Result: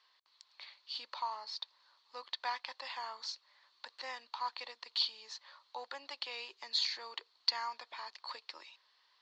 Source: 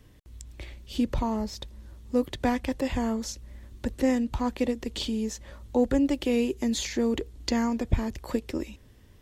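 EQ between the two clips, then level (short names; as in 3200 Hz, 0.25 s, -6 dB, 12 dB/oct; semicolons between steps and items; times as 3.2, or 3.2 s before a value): ladder high-pass 890 Hz, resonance 55%; ladder low-pass 4600 Hz, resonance 80%; +12.0 dB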